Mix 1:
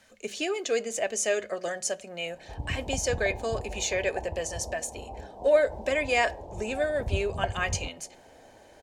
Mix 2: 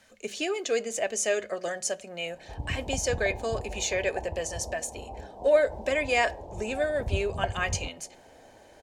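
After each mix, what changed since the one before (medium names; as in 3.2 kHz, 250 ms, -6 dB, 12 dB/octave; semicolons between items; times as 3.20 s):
no change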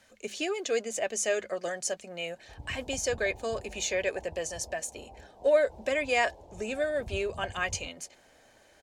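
background -9.0 dB; reverb: off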